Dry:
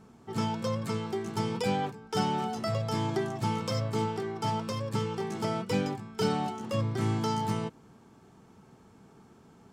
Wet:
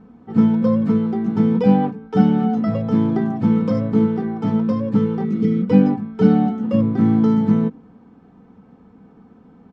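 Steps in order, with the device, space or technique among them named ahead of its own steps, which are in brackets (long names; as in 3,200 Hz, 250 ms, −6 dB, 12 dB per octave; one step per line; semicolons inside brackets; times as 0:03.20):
phone in a pocket (low-pass filter 3,800 Hz 12 dB per octave; parametric band 170 Hz +4 dB 1.9 octaves; high-shelf EQ 2,200 Hz −12 dB)
healed spectral selection 0:05.26–0:05.61, 460–1,800 Hz after
dynamic equaliser 210 Hz, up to +8 dB, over −41 dBFS, Q 0.78
comb filter 4 ms, depth 60%
level +5 dB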